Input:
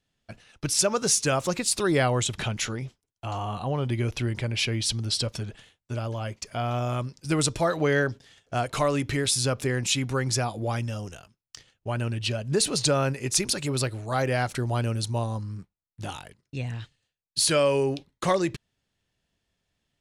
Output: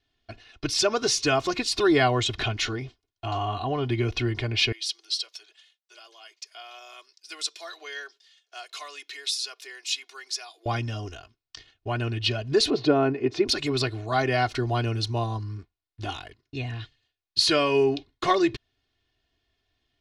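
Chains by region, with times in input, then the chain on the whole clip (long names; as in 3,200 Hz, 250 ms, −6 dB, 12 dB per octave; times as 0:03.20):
0:04.72–0:10.66: Butterworth high-pass 330 Hz 48 dB per octave + first difference
0:12.70–0:13.48: band-pass filter 220–3,300 Hz + tilt shelving filter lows +8 dB, about 930 Hz
whole clip: high shelf with overshoot 6,400 Hz −13 dB, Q 1.5; comb filter 2.8 ms, depth 82%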